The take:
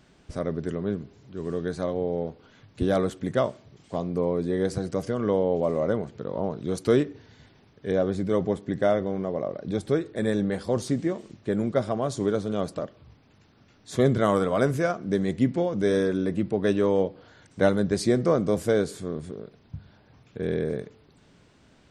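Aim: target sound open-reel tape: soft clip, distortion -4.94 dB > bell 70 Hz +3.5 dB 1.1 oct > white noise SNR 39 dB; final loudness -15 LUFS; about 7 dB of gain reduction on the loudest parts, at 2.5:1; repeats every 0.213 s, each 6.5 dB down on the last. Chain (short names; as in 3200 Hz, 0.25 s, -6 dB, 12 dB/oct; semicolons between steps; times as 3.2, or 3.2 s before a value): compressor 2.5:1, threshold -27 dBFS; feedback echo 0.213 s, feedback 47%, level -6.5 dB; soft clip -35.5 dBFS; bell 70 Hz +3.5 dB 1.1 oct; white noise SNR 39 dB; gain +24 dB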